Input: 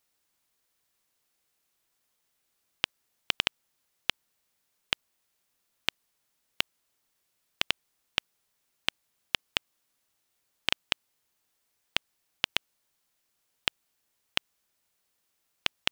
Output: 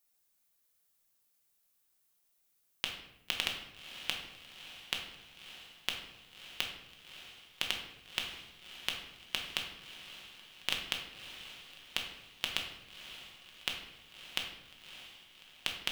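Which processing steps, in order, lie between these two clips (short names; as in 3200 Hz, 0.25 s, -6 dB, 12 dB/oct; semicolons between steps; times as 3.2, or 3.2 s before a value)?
high shelf 7800 Hz +12 dB; on a send: diffused feedback echo 0.603 s, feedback 53%, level -11.5 dB; on the sum: shoebox room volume 270 m³, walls mixed, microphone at 1 m; gain -8.5 dB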